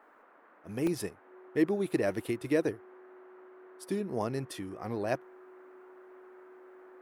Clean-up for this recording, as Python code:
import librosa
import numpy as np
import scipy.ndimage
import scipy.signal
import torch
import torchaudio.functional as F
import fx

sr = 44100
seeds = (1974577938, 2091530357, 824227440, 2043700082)

y = fx.notch(x, sr, hz=370.0, q=30.0)
y = fx.fix_interpolate(y, sr, at_s=(0.87,), length_ms=2.9)
y = fx.noise_reduce(y, sr, print_start_s=0.01, print_end_s=0.51, reduce_db=19.0)